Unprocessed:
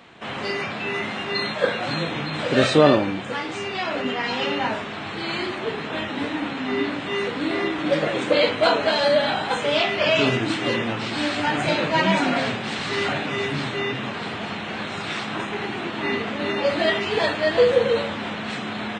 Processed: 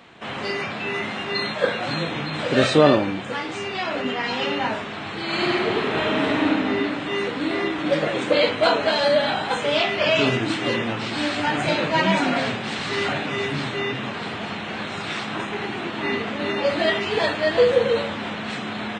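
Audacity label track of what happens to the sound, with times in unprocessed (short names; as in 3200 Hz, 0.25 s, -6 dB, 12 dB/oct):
5.250000	6.470000	reverb throw, RT60 2.4 s, DRR -4.5 dB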